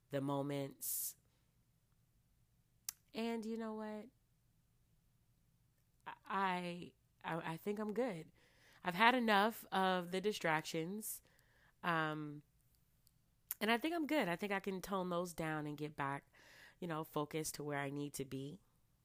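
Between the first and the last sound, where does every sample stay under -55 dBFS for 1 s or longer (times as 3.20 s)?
1.12–2.89 s
4.08–6.00 s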